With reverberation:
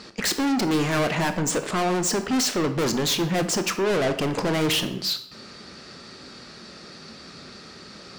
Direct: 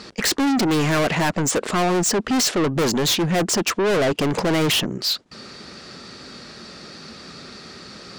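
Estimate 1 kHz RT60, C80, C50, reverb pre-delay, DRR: 0.80 s, 14.5 dB, 11.0 dB, 19 ms, 8.5 dB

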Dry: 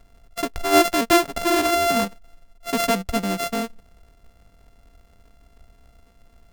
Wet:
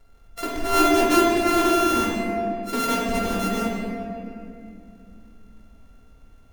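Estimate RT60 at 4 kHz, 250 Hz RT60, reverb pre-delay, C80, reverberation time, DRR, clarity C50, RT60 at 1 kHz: 1.6 s, 3.7 s, 7 ms, 0.0 dB, 2.6 s, −5.5 dB, −2.0 dB, 2.2 s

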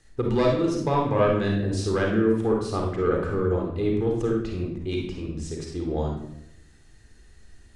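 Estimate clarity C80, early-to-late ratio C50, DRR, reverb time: 6.5 dB, 1.5 dB, −0.5 dB, 0.80 s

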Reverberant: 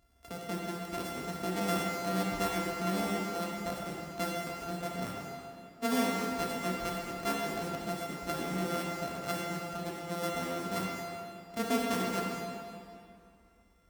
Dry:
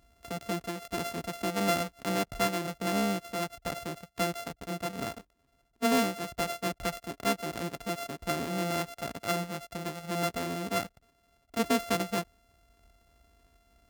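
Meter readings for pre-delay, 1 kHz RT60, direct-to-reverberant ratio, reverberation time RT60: 21 ms, 2.5 s, −2.5 dB, 2.5 s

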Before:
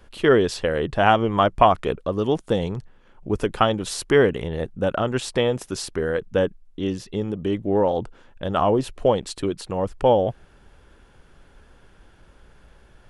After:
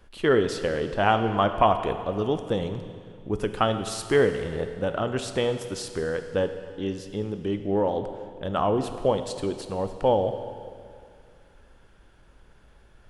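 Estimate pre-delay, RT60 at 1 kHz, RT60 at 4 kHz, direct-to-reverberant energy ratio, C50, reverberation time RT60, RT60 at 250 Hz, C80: 19 ms, 2.2 s, 2.1 s, 8.0 dB, 9.0 dB, 2.2 s, 2.2 s, 10.0 dB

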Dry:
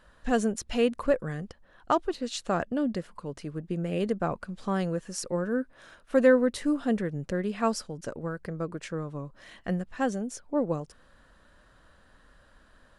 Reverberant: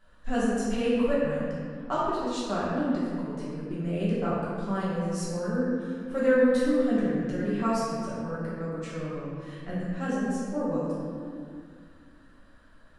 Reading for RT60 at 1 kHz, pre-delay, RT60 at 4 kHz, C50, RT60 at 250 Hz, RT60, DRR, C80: 2.0 s, 5 ms, 1.4 s, −2.5 dB, 3.0 s, 2.1 s, −9.0 dB, −0.5 dB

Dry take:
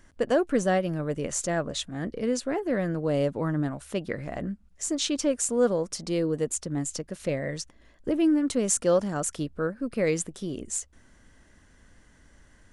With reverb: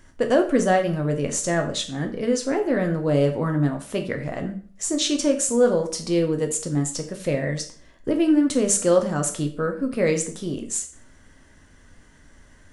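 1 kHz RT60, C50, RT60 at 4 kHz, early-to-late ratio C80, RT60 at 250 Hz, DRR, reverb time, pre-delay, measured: 0.45 s, 11.5 dB, 0.40 s, 15.0 dB, 0.40 s, 4.0 dB, 0.45 s, 5 ms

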